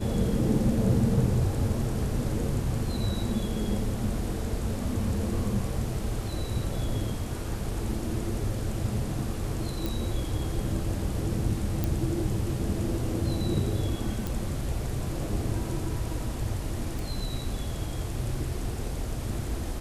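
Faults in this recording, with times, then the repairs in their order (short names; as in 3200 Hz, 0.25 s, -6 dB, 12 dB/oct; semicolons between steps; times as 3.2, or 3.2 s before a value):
9.86 pop
11.84 pop
14.27 pop
16.99 pop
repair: de-click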